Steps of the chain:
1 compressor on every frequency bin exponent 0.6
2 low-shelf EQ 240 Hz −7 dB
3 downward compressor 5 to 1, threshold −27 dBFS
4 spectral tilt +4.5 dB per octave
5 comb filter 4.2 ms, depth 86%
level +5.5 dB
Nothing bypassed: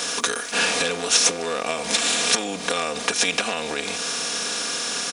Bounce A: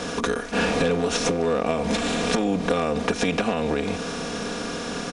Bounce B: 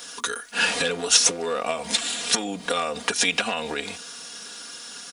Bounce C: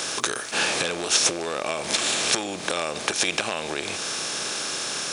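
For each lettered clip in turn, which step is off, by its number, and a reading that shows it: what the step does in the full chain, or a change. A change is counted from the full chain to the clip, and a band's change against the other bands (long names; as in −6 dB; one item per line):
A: 4, 8 kHz band −15.0 dB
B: 1, change in crest factor +2.0 dB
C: 5, 125 Hz band +2.5 dB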